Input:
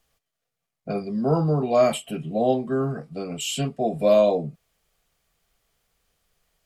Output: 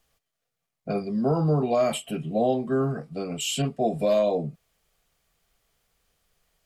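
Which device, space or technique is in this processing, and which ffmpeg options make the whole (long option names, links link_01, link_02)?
clipper into limiter: -filter_complex "[0:a]asettb=1/sr,asplit=3[link_01][link_02][link_03];[link_01]atrim=end=3.624[link_04];[link_02]atrim=start=3.62:end=4.19,asetpts=PTS-STARTPTS,afade=type=in:duration=0.004:curve=qsin,afade=type=out:start_time=0.566:duration=0.004:curve=qsin,adynamicequalizer=threshold=0.00562:dfrequency=6000:dqfactor=1:tfrequency=6000:tqfactor=1:attack=5:release=100:ratio=0.375:range=2.5:mode=boostabove:tftype=bell[link_05];[link_03]atrim=start=4.186[link_06];[link_04][link_05]acrossfade=duration=0.004:curve1=hsin:curve2=qsin[link_07];[link_07][link_06]acrossfade=duration=0.004:curve1=qsin:curve2=hsin,asoftclip=type=hard:threshold=-9dB,alimiter=limit=-14dB:level=0:latency=1:release=122"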